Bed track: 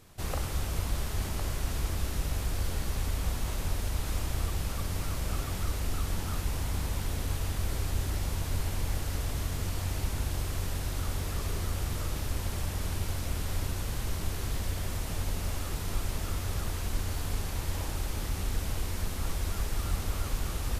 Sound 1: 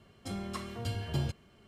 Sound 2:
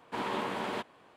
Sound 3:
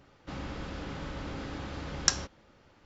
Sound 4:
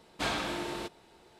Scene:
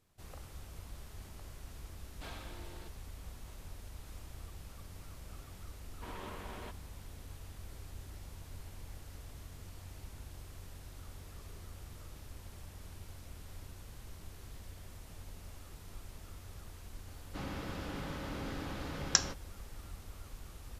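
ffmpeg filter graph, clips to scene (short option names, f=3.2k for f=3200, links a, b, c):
-filter_complex "[0:a]volume=-17dB[a];[2:a]bandreject=f=850:w=12[b];[3:a]highpass=69[c];[4:a]atrim=end=1.39,asetpts=PTS-STARTPTS,volume=-17dB,afade=t=in:d=0.004:c=hsin,afade=t=out:st=1.386:d=0.004:c=hsin,adelay=2010[d];[b]atrim=end=1.16,asetpts=PTS-STARTPTS,volume=-12.5dB,afade=t=in:d=0.004:c=hsin,afade=t=out:st=1.156:d=0.004:c=hsin,adelay=259749S[e];[c]atrim=end=2.85,asetpts=PTS-STARTPTS,volume=-2dB,afade=t=in:d=0.004:c=hsin,afade=t=out:st=2.846:d=0.004:c=hsin,adelay=17070[f];[a][d][e][f]amix=inputs=4:normalize=0"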